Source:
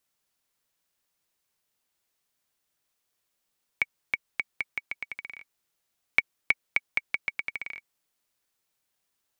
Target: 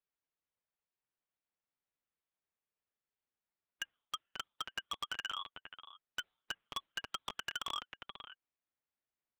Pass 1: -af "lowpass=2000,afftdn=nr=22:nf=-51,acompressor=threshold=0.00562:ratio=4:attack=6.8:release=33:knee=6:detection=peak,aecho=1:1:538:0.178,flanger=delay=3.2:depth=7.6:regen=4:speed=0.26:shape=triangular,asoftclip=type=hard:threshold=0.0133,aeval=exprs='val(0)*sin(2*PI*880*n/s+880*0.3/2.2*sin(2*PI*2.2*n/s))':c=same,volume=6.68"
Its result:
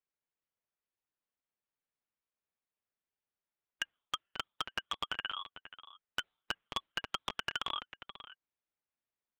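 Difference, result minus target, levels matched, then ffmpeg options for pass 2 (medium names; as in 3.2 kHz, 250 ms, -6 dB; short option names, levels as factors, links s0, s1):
hard clipper: distortion -4 dB
-af "lowpass=2000,afftdn=nr=22:nf=-51,acompressor=threshold=0.00562:ratio=4:attack=6.8:release=33:knee=6:detection=peak,aecho=1:1:538:0.178,flanger=delay=3.2:depth=7.6:regen=4:speed=0.26:shape=triangular,asoftclip=type=hard:threshold=0.00531,aeval=exprs='val(0)*sin(2*PI*880*n/s+880*0.3/2.2*sin(2*PI*2.2*n/s))':c=same,volume=6.68"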